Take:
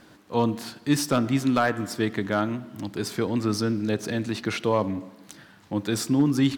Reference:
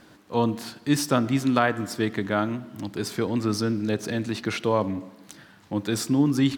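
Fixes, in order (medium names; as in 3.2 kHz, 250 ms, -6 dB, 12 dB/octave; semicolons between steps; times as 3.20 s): clip repair -12 dBFS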